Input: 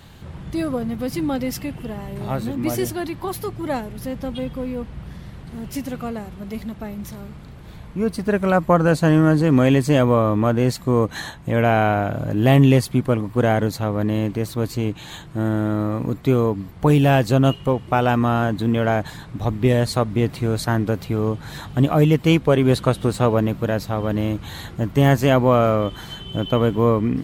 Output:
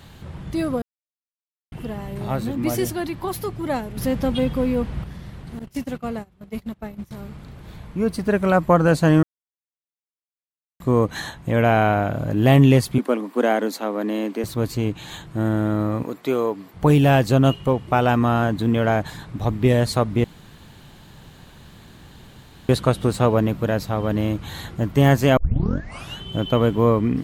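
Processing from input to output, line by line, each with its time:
0.82–1.72 mute
3.97–5.04 gain +6 dB
5.59–7.11 gate -31 dBFS, range -21 dB
9.23–10.8 mute
12.98–14.44 steep high-pass 220 Hz 48 dB/oct
16.03–16.74 HPF 340 Hz
20.24–22.69 room tone
25.37 tape start 0.82 s

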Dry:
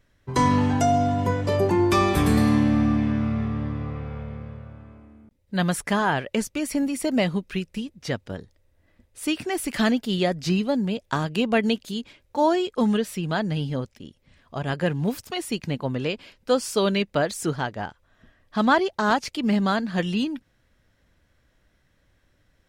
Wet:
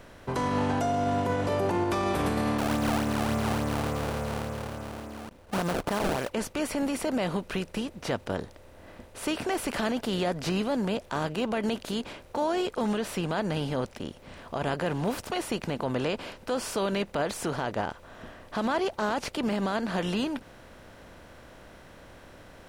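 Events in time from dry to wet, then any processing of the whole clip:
2.58–6.31 decimation with a swept rate 26×, swing 160% 3.5 Hz
whole clip: per-bin compression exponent 0.6; bell 650 Hz +4 dB 1.5 oct; limiter -11.5 dBFS; gain -7.5 dB

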